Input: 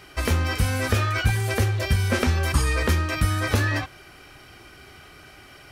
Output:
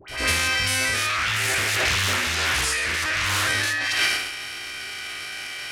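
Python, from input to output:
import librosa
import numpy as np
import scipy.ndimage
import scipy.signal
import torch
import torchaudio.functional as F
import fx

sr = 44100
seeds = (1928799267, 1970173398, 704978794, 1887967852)

y = fx.spec_steps(x, sr, hold_ms=100)
y = fx.band_shelf(y, sr, hz=4200.0, db=10.0, octaves=3.0)
y = fx.dispersion(y, sr, late='highs', ms=84.0, hz=1200.0)
y = fx.transient(y, sr, attack_db=3, sustain_db=8)
y = fx.low_shelf(y, sr, hz=340.0, db=-12.0)
y = fx.echo_multitap(y, sr, ms=(53, 178), db=(-10.5, -17.5))
y = fx.transient(y, sr, attack_db=-9, sustain_db=10)
y = fx.over_compress(y, sr, threshold_db=-27.0, ratio=-1.0)
y = fx.doppler_dist(y, sr, depth_ms=0.87, at=(1.09, 3.49))
y = y * 10.0 ** (4.0 / 20.0)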